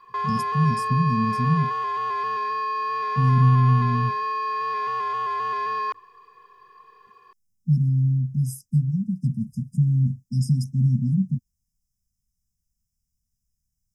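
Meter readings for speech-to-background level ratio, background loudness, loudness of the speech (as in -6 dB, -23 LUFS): 3.0 dB, -26.0 LUFS, -23.0 LUFS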